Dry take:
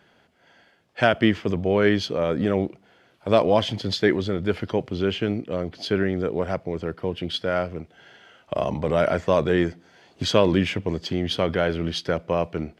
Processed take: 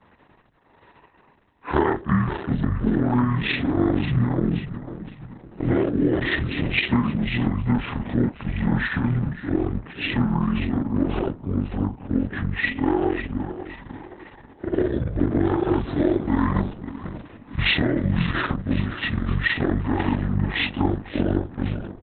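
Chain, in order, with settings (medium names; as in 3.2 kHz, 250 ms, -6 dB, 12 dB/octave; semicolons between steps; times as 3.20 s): short-time spectra conjugated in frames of 48 ms; dynamic bell 5.9 kHz, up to +6 dB, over -58 dBFS, Q 4; compression 16:1, threshold -23 dBFS, peak gain reduction 8.5 dB; feedback delay 313 ms, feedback 42%, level -11.5 dB; wide varispeed 0.581×; trim +7.5 dB; Opus 6 kbps 48 kHz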